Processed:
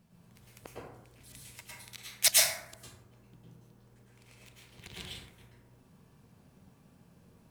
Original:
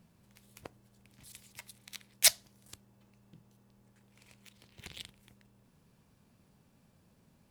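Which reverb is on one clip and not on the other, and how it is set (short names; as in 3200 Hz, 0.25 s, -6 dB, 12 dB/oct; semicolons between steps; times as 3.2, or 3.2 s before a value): plate-style reverb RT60 0.87 s, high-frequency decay 0.45×, pre-delay 95 ms, DRR -6 dB; gain -2 dB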